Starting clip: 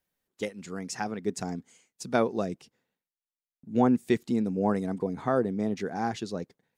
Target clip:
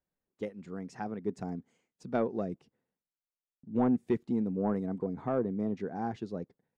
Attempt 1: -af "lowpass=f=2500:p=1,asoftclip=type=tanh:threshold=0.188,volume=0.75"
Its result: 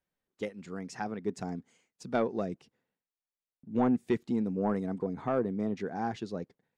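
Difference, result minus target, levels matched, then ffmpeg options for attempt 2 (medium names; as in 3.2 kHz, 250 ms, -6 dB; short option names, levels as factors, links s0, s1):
2 kHz band +4.5 dB
-af "lowpass=f=810:p=1,asoftclip=type=tanh:threshold=0.188,volume=0.75"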